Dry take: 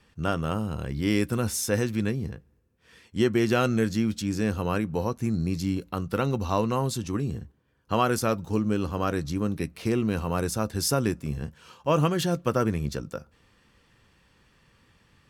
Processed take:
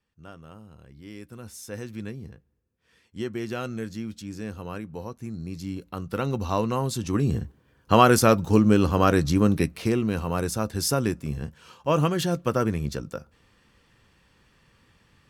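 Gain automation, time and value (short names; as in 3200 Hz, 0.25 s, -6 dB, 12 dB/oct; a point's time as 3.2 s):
1.15 s -18 dB
1.97 s -8.5 dB
5.36 s -8.5 dB
6.4 s 0 dB
6.9 s 0 dB
7.36 s +7.5 dB
9.57 s +7.5 dB
10 s +0.5 dB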